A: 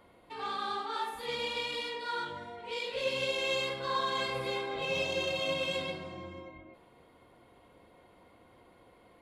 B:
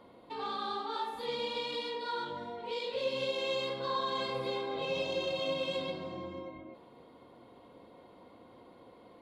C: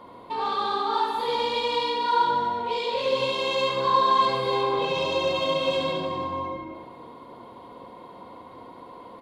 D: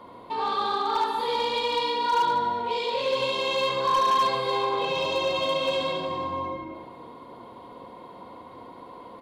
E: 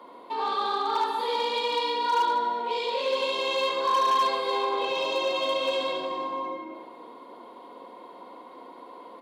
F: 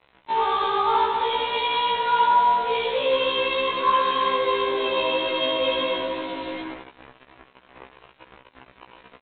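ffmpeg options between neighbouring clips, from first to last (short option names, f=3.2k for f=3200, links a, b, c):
-af "equalizer=f=125:t=o:w=1:g=6,equalizer=f=250:t=o:w=1:g=11,equalizer=f=500:t=o:w=1:g=8,equalizer=f=1k:t=o:w=1:g=8,equalizer=f=4k:t=o:w=1:g=10,acompressor=threshold=-33dB:ratio=1.5,volume=-6.5dB"
-filter_complex "[0:a]equalizer=f=1k:w=4.6:g=10.5,asplit=2[a][b];[b]asoftclip=type=tanh:threshold=-32.5dB,volume=-11dB[c];[a][c]amix=inputs=2:normalize=0,aecho=1:1:70|150.5|243.1|349.5|472:0.631|0.398|0.251|0.158|0.1,volume=5dB"
-filter_complex "[0:a]acrossover=split=440[a][b];[a]alimiter=level_in=8dB:limit=-24dB:level=0:latency=1,volume=-8dB[c];[c][b]amix=inputs=2:normalize=0,asoftclip=type=hard:threshold=-18dB"
-af "highpass=f=250:w=0.5412,highpass=f=250:w=1.3066,volume=-1dB"
-af "aresample=8000,acrusher=bits=5:mix=0:aa=0.5,aresample=44100,afftfilt=real='re*1.73*eq(mod(b,3),0)':imag='im*1.73*eq(mod(b,3),0)':win_size=2048:overlap=0.75,volume=7.5dB"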